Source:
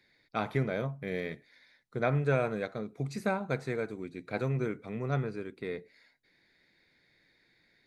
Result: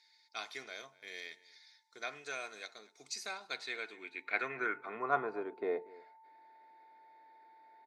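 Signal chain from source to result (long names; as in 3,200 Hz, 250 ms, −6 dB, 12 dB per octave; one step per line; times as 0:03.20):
high-pass filter 200 Hz 12 dB per octave
comb filter 2.8 ms, depth 39%
steady tone 890 Hz −65 dBFS
slap from a distant wall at 41 metres, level −21 dB
band-pass filter sweep 5,600 Hz → 700 Hz, 0:03.18–0:05.60
level +10.5 dB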